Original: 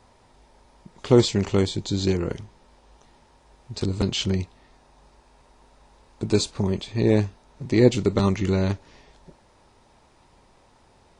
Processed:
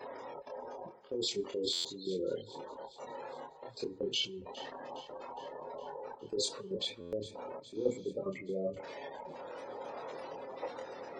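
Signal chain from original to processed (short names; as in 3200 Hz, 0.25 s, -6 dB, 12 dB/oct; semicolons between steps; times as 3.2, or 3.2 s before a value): zero-crossing step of -32 dBFS; reverse; compressor 20:1, threshold -27 dBFS, peak gain reduction 18.5 dB; reverse; spectral gate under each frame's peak -15 dB strong; HPF 350 Hz 12 dB/oct; bell 510 Hz +11.5 dB 0.34 oct; gate -43 dBFS, range -12 dB; level quantiser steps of 12 dB; on a send at -14 dB: reverb RT60 0.85 s, pre-delay 7 ms; on the sum: chorus voices 2, 0.2 Hz, delay 26 ms, depth 1.6 ms; thinning echo 0.412 s, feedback 59%, high-pass 1000 Hz, level -15.5 dB; spectral repair 7.77–8.06, 2300–6700 Hz; stuck buffer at 1.72/7, samples 512, times 10; gain +6 dB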